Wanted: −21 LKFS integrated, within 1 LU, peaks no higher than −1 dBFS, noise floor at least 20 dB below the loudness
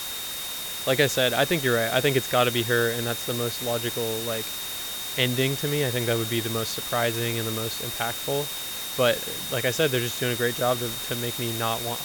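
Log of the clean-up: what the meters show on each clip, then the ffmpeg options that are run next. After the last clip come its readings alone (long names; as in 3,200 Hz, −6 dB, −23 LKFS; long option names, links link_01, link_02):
interfering tone 3,700 Hz; level of the tone −35 dBFS; background noise floor −33 dBFS; target noise floor −45 dBFS; integrated loudness −25.0 LKFS; sample peak −7.5 dBFS; target loudness −21.0 LKFS
→ -af "bandreject=frequency=3700:width=30"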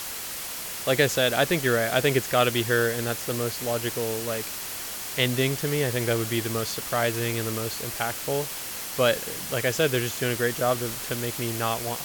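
interfering tone none found; background noise floor −35 dBFS; target noise floor −46 dBFS
→ -af "afftdn=noise_reduction=11:noise_floor=-35"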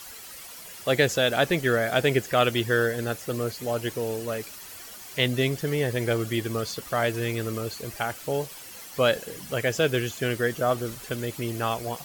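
background noise floor −43 dBFS; target noise floor −47 dBFS
→ -af "afftdn=noise_reduction=6:noise_floor=-43"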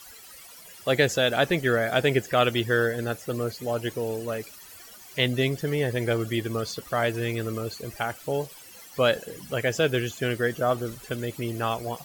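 background noise floor −47 dBFS; integrated loudness −26.5 LKFS; sample peak −7.5 dBFS; target loudness −21.0 LKFS
→ -af "volume=5.5dB"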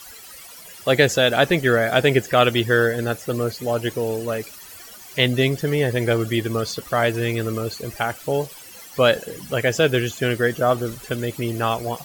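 integrated loudness −21.0 LKFS; sample peak −2.0 dBFS; background noise floor −42 dBFS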